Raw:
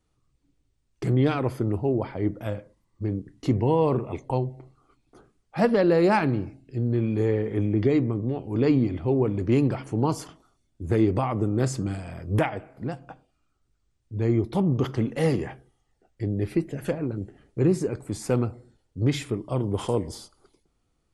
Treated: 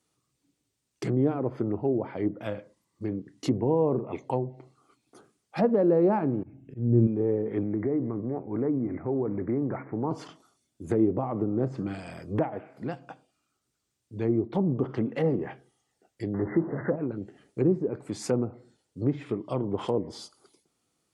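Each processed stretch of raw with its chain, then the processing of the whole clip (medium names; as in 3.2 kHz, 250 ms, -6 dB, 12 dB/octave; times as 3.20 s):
6.43–7.07 s: Butterworth band-stop 4.5 kHz, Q 2.1 + RIAA curve playback + slow attack 229 ms
7.63–10.11 s: compression 3:1, threshold -22 dBFS + steep low-pass 2.2 kHz 96 dB/octave
16.34–16.96 s: jump at every zero crossing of -29 dBFS + brick-wall FIR low-pass 2.1 kHz
whole clip: high-pass 160 Hz 12 dB/octave; low-pass that closes with the level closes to 710 Hz, closed at -21.5 dBFS; treble shelf 4.2 kHz +10 dB; trim -1 dB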